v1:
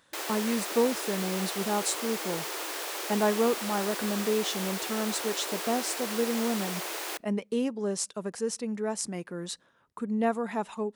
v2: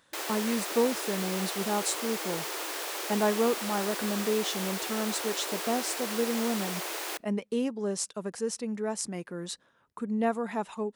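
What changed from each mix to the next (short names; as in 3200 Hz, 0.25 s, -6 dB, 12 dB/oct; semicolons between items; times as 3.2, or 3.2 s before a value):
speech: send -10.5 dB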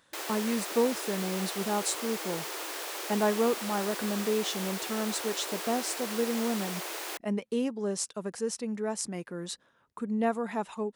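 reverb: off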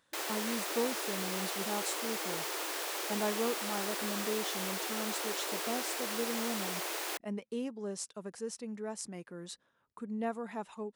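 speech -7.5 dB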